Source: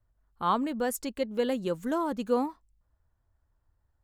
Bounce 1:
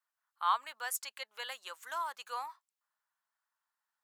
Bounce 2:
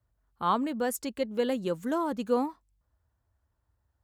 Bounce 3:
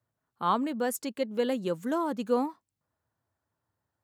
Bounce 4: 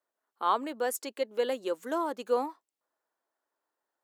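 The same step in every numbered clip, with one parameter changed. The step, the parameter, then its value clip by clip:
high-pass, cutoff frequency: 1 kHz, 47 Hz, 120 Hz, 340 Hz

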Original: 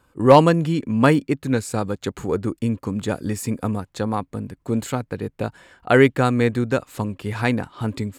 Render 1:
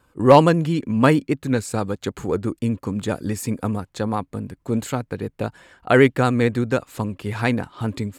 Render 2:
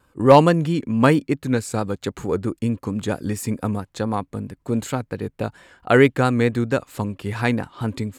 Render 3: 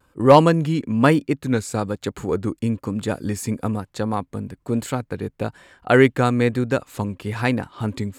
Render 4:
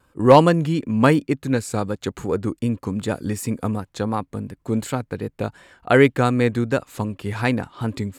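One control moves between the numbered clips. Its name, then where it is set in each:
vibrato, rate: 13 Hz, 4.5 Hz, 1.1 Hz, 2.7 Hz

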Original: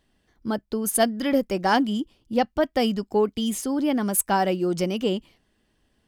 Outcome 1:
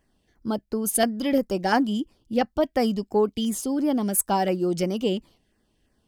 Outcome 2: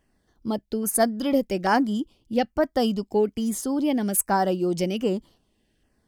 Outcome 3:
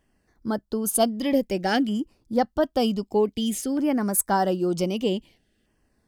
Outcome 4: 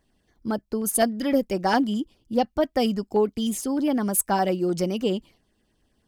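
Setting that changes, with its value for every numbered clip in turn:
LFO notch, rate: 2.9 Hz, 1.2 Hz, 0.53 Hz, 9.8 Hz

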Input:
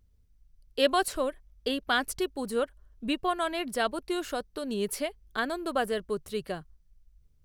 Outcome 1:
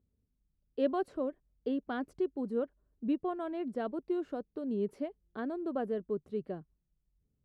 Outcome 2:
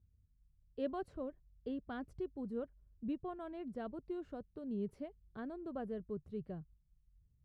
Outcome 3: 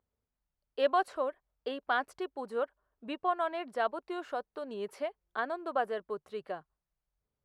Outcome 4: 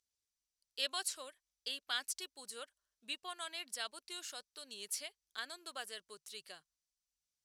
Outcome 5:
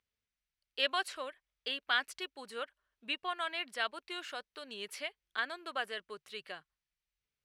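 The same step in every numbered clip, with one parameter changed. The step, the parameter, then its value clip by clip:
band-pass filter, frequency: 270 Hz, 110 Hz, 860 Hz, 6.3 kHz, 2.4 kHz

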